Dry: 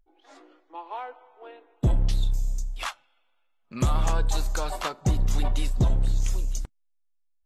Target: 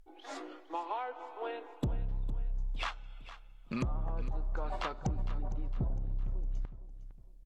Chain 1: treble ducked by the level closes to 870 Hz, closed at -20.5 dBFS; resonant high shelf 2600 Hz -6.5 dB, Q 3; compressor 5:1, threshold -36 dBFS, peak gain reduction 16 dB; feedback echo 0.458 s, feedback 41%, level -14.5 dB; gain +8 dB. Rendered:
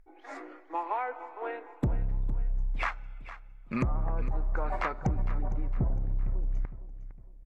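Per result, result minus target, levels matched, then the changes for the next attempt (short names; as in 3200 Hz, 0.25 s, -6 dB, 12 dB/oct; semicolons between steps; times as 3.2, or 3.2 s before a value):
4000 Hz band -11.0 dB; compressor: peak gain reduction -5 dB
remove: resonant high shelf 2600 Hz -6.5 dB, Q 3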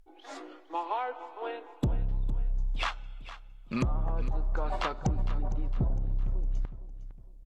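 compressor: peak gain reduction -5 dB
change: compressor 5:1, threshold -42.5 dBFS, peak gain reduction 21.5 dB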